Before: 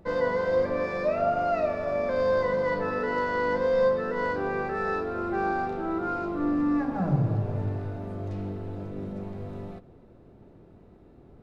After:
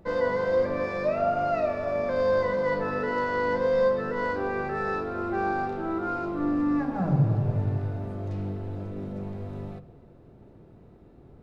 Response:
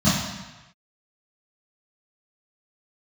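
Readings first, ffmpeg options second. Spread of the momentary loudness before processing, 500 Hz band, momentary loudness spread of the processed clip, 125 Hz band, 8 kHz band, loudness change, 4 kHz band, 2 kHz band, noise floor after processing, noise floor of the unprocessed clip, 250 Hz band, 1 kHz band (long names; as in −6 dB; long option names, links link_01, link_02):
12 LU, 0.0 dB, 11 LU, +2.5 dB, can't be measured, +0.5 dB, 0.0 dB, 0.0 dB, −52 dBFS, −53 dBFS, +0.5 dB, 0.0 dB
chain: -filter_complex "[0:a]asplit=2[link_01][link_02];[1:a]atrim=start_sample=2205,asetrate=31752,aresample=44100,adelay=33[link_03];[link_02][link_03]afir=irnorm=-1:irlink=0,volume=-39dB[link_04];[link_01][link_04]amix=inputs=2:normalize=0"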